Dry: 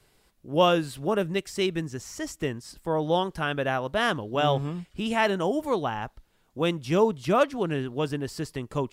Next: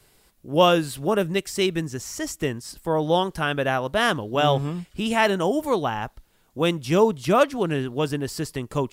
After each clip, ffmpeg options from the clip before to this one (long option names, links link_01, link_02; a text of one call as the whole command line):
ffmpeg -i in.wav -af "highshelf=frequency=7700:gain=7.5,volume=3.5dB" out.wav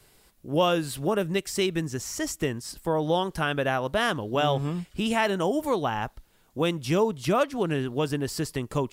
ffmpeg -i in.wav -af "acompressor=threshold=-23dB:ratio=2" out.wav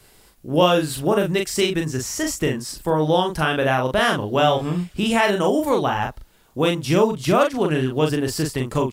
ffmpeg -i in.wav -filter_complex "[0:a]asplit=2[link_01][link_02];[link_02]adelay=39,volume=-4dB[link_03];[link_01][link_03]amix=inputs=2:normalize=0,volume=5dB" out.wav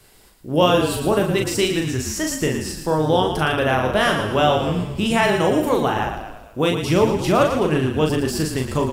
ffmpeg -i in.wav -filter_complex "[0:a]asplit=7[link_01][link_02][link_03][link_04][link_05][link_06][link_07];[link_02]adelay=114,afreqshift=-39,volume=-7.5dB[link_08];[link_03]adelay=228,afreqshift=-78,volume=-13dB[link_09];[link_04]adelay=342,afreqshift=-117,volume=-18.5dB[link_10];[link_05]adelay=456,afreqshift=-156,volume=-24dB[link_11];[link_06]adelay=570,afreqshift=-195,volume=-29.6dB[link_12];[link_07]adelay=684,afreqshift=-234,volume=-35.1dB[link_13];[link_01][link_08][link_09][link_10][link_11][link_12][link_13]amix=inputs=7:normalize=0" out.wav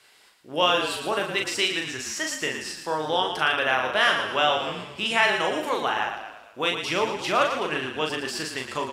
ffmpeg -i in.wav -af "bandpass=frequency=2400:width_type=q:width=0.65:csg=0,volume=1.5dB" out.wav